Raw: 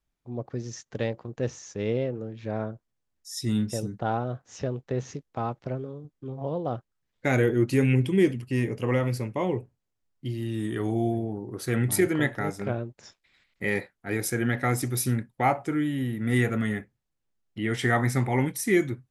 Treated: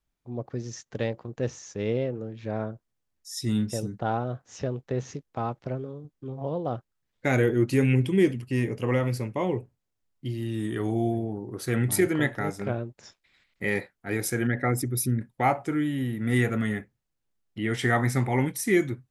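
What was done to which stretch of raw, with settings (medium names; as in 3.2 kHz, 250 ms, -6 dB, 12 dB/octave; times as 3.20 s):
14.47–15.21 s: resonances exaggerated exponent 1.5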